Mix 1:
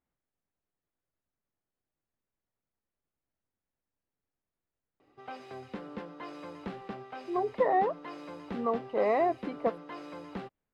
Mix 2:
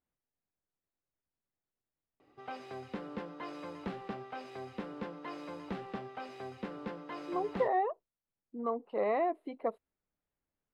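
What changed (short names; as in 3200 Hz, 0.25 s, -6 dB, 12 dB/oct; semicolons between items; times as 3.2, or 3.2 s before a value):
speech -4.0 dB; background: entry -2.80 s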